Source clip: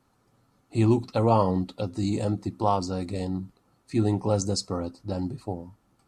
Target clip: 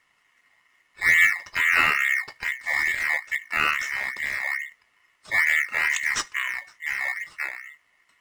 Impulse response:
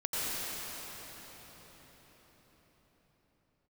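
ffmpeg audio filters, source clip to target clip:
-filter_complex "[0:a]asetrate=32667,aresample=44100,equalizer=frequency=410:width_type=o:width=0.56:gain=-10.5,aeval=exprs='val(0)*sin(2*PI*2000*n/s)':channel_layout=same,asplit=2[link_01][link_02];[link_02]acrusher=samples=12:mix=1:aa=0.000001:lfo=1:lforange=7.2:lforate=2.3,volume=-12dB[link_03];[link_01][link_03]amix=inputs=2:normalize=0,volume=5dB"

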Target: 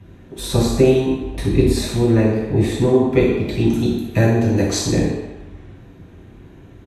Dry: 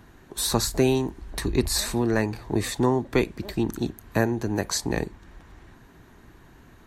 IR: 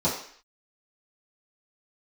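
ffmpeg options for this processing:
-filter_complex "[0:a]asettb=1/sr,asplit=3[link_01][link_02][link_03];[link_01]atrim=end=3.454[link_04];[link_02]atrim=start=3.45:end=4.91,asetpts=PTS-STARTPTS,afade=type=in:duration=0.004:curve=qsin,afade=type=out:start_time=1.456:duration=0.004:curve=qsin,equalizer=frequency=6000:width=0.36:gain=8[link_05];[link_03]atrim=start=4.906[link_06];[link_04][link_05]acrossfade=duration=0.004:curve1=hsin:curve2=qsin[link_07];[link_07][link_06]acrossfade=duration=0.004:curve1=qsin:curve2=hsin,aecho=1:1:60|120|180|240|300:0.282|0.138|0.0677|0.0332|0.0162[link_08];[1:a]atrim=start_sample=2205,asetrate=24696,aresample=44100[link_09];[link_08][link_09]afir=irnorm=-1:irlink=0,volume=-12.5dB"

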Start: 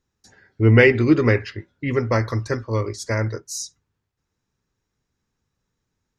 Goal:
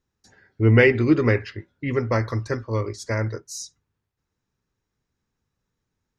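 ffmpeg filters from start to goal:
ffmpeg -i in.wav -af "highshelf=frequency=5600:gain=-4.5,volume=-2dB" out.wav

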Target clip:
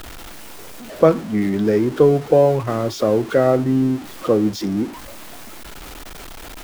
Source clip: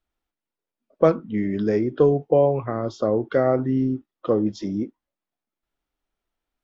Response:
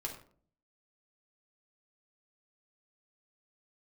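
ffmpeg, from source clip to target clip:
-af "aeval=exprs='val(0)+0.5*0.0251*sgn(val(0))':channel_layout=same,volume=3.5dB"

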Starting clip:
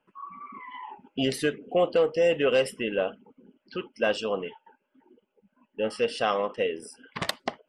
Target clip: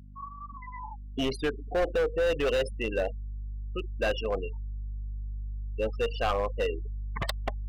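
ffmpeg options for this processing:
ffmpeg -i in.wav -af "afftfilt=real='re*gte(hypot(re,im),0.0447)':imag='im*gte(hypot(re,im),0.0447)':win_size=1024:overlap=0.75,volume=22dB,asoftclip=hard,volume=-22dB,aeval=exprs='val(0)+0.00447*(sin(2*PI*50*n/s)+sin(2*PI*2*50*n/s)/2+sin(2*PI*3*50*n/s)/3+sin(2*PI*4*50*n/s)/4+sin(2*PI*5*50*n/s)/5)':channel_layout=same,asubboost=boost=11:cutoff=62" out.wav

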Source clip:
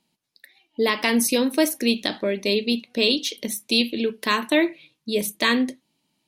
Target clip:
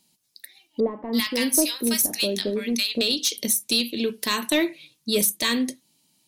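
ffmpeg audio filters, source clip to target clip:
ffmpeg -i in.wav -filter_complex "[0:a]bass=frequency=250:gain=3,treble=frequency=4000:gain=14,alimiter=limit=-8.5dB:level=0:latency=1:release=394,asoftclip=type=tanh:threshold=-11dB,asettb=1/sr,asplit=3[link_01][link_02][link_03];[link_01]atrim=end=0.804[link_04];[link_02]atrim=start=0.8:end=3.01,asetpts=PTS-STARTPTS,afade=type=in:duration=0.004:curve=qsin,afade=type=out:start_time=2.206:duration=0.004:curve=qsin,acrossover=split=1000[link_05][link_06];[link_06]adelay=330[link_07];[link_05][link_07]amix=inputs=2:normalize=0,atrim=end_sample=97461[link_08];[link_03]atrim=start=3.006[link_09];[link_04][link_08]acrossfade=duration=0.004:curve1=hsin:curve2=qsin[link_10];[link_10][link_09]acrossfade=duration=0.004:curve1=qsin:curve2=hsin" out.wav

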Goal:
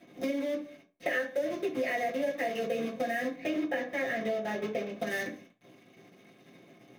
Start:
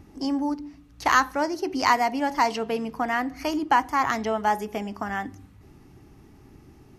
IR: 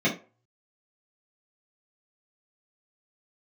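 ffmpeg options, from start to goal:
-filter_complex "[0:a]asplit=3[link_01][link_02][link_03];[link_01]bandpass=frequency=530:width_type=q:width=8,volume=0dB[link_04];[link_02]bandpass=frequency=1840:width_type=q:width=8,volume=-6dB[link_05];[link_03]bandpass=frequency=2480:width_type=q:width=8,volume=-9dB[link_06];[link_04][link_05][link_06]amix=inputs=3:normalize=0,acrusher=bits=8:dc=4:mix=0:aa=0.000001[link_07];[1:a]atrim=start_sample=2205[link_08];[link_07][link_08]afir=irnorm=-1:irlink=0,acompressor=threshold=-30dB:ratio=4,asetnsamples=nb_out_samples=441:pad=0,asendcmd='3.36 equalizer g -2;5 equalizer g 7.5',equalizer=frequency=12000:width=0.47:gain=5.5"

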